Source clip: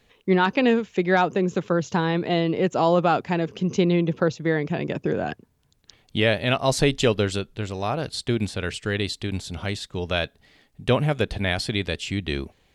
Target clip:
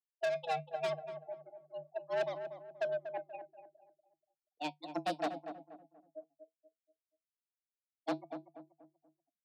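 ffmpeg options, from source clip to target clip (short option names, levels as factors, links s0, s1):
-filter_complex "[0:a]aeval=exprs='val(0)+0.5*0.0841*sgn(val(0))':c=same,agate=range=0.00794:threshold=0.224:ratio=16:detection=peak,afftfilt=real='re*gte(hypot(re,im),0.00891)':imag='im*gte(hypot(re,im),0.00891)':win_size=1024:overlap=0.75,firequalizer=gain_entry='entry(130,0);entry(190,-23);entry(350,9);entry(510,-7);entry(820,-25);entry(1200,-26);entry(1700,-4);entry(3900,-16);entry(7600,5);entry(13000,-16)':delay=0.05:min_phase=1,acrossover=split=660|2400[s0][s1][s2];[s1]tremolo=f=3.7:d=0.32[s3];[s2]acontrast=34[s4];[s0][s3][s4]amix=inputs=3:normalize=0,flanger=delay=6.9:depth=1.4:regen=75:speed=0.78:shape=sinusoidal,asoftclip=type=tanh:threshold=0.0106,afreqshift=110,asplit=2[s5][s6];[s6]adelay=324,lowpass=f=900:p=1,volume=0.398,asplit=2[s7][s8];[s8]adelay=324,lowpass=f=900:p=1,volume=0.39,asplit=2[s9][s10];[s10]adelay=324,lowpass=f=900:p=1,volume=0.39,asplit=2[s11][s12];[s12]adelay=324,lowpass=f=900:p=1,volume=0.39[s13];[s7][s9][s11][s13]amix=inputs=4:normalize=0[s14];[s5][s14]amix=inputs=2:normalize=0,asetrate=59535,aresample=44100,volume=2.99"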